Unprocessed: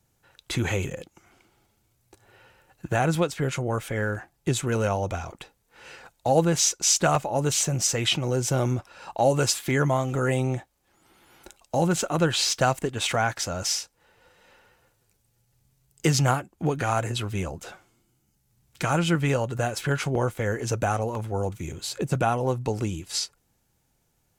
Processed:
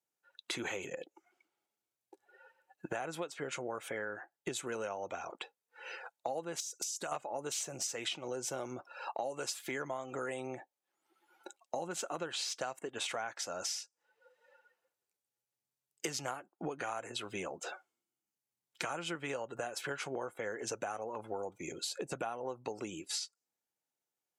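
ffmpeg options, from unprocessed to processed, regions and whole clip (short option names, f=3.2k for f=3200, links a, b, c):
-filter_complex "[0:a]asettb=1/sr,asplit=3[a][b][c];[a]atrim=end=6.604[d];[b]atrim=start=6.6:end=7.12,asetpts=PTS-STARTPTS,afade=t=in:d=0.004:c=qsin,afade=t=out:st=0.516:d=0.004:c=qsin,aemphasis=mode=production:type=50kf,acompressor=threshold=-27dB:ratio=16:attack=3.2:release=140:knee=1:detection=peak[e];[c]atrim=start=7.116[f];[d][e]acrossfade=d=0.004:c1=hsin:c2=qsin[g];[g][f]acrossfade=d=0.004:c1=qsin:c2=hsin,highpass=360,afftdn=nr=21:nf=-48,acompressor=threshold=-38dB:ratio=6,volume=1.5dB"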